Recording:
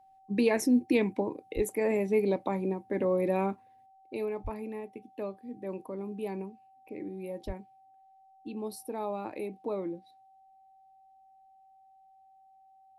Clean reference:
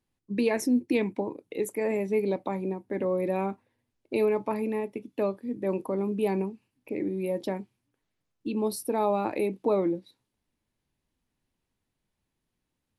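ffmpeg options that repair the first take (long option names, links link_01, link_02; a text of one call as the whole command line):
ffmpeg -i in.wav -filter_complex "[0:a]bandreject=frequency=770:width=30,asplit=3[link_01][link_02][link_03];[link_01]afade=type=out:start_time=1.55:duration=0.02[link_04];[link_02]highpass=frequency=140:width=0.5412,highpass=frequency=140:width=1.3066,afade=type=in:start_time=1.55:duration=0.02,afade=type=out:start_time=1.67:duration=0.02[link_05];[link_03]afade=type=in:start_time=1.67:duration=0.02[link_06];[link_04][link_05][link_06]amix=inputs=3:normalize=0,asplit=3[link_07][link_08][link_09];[link_07]afade=type=out:start_time=4.43:duration=0.02[link_10];[link_08]highpass=frequency=140:width=0.5412,highpass=frequency=140:width=1.3066,afade=type=in:start_time=4.43:duration=0.02,afade=type=out:start_time=4.55:duration=0.02[link_11];[link_09]afade=type=in:start_time=4.55:duration=0.02[link_12];[link_10][link_11][link_12]amix=inputs=3:normalize=0,asplit=3[link_13][link_14][link_15];[link_13]afade=type=out:start_time=7.46:duration=0.02[link_16];[link_14]highpass=frequency=140:width=0.5412,highpass=frequency=140:width=1.3066,afade=type=in:start_time=7.46:duration=0.02,afade=type=out:start_time=7.58:duration=0.02[link_17];[link_15]afade=type=in:start_time=7.58:duration=0.02[link_18];[link_16][link_17][link_18]amix=inputs=3:normalize=0,asetnsamples=nb_out_samples=441:pad=0,asendcmd='3.86 volume volume 9dB',volume=0dB" out.wav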